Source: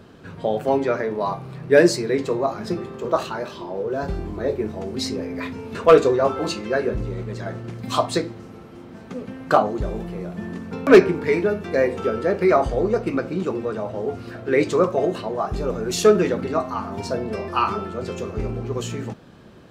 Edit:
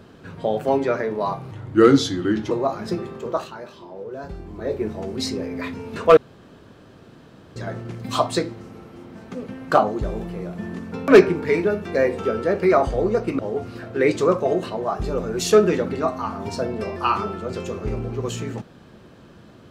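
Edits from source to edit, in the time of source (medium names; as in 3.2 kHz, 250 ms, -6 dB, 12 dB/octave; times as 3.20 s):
1.51–2.30 s: speed 79%
2.92–4.63 s: dip -8 dB, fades 0.38 s
5.96–7.35 s: room tone
13.18–13.91 s: delete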